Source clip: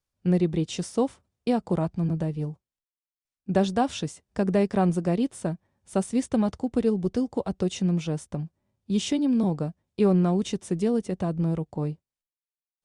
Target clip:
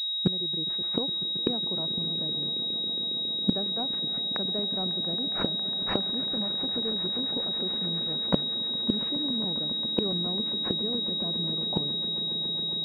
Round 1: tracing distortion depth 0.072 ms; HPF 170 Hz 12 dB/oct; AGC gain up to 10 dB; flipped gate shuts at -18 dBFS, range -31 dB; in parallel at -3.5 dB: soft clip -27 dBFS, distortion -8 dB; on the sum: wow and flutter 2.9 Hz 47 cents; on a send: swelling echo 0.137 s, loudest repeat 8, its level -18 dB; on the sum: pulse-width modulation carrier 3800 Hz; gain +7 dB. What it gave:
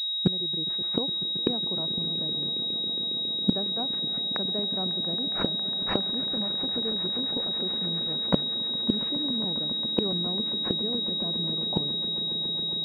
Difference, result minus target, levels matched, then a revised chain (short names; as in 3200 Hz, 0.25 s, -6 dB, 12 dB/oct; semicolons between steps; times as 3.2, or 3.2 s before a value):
soft clip: distortion -6 dB
tracing distortion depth 0.072 ms; HPF 170 Hz 12 dB/oct; AGC gain up to 10 dB; flipped gate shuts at -18 dBFS, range -31 dB; in parallel at -3.5 dB: soft clip -37.5 dBFS, distortion -2 dB; on the sum: wow and flutter 2.9 Hz 47 cents; on a send: swelling echo 0.137 s, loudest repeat 8, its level -18 dB; on the sum: pulse-width modulation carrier 3800 Hz; gain +7 dB